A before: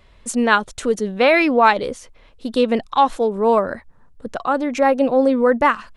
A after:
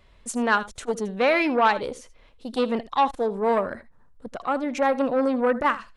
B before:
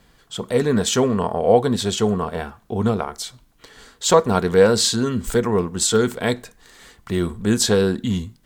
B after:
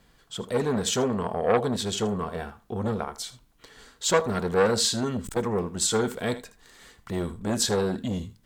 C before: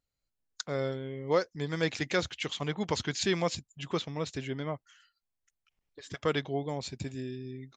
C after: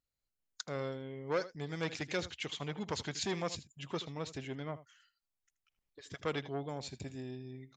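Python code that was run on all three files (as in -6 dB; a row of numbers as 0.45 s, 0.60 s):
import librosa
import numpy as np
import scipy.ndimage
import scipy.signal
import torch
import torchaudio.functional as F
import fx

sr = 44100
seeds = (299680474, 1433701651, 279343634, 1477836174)

p1 = x + fx.echo_single(x, sr, ms=79, db=-16.5, dry=0)
p2 = fx.transformer_sat(p1, sr, knee_hz=1000.0)
y = p2 * 10.0 ** (-5.0 / 20.0)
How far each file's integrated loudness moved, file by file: -6.0 LU, -7.0 LU, -6.5 LU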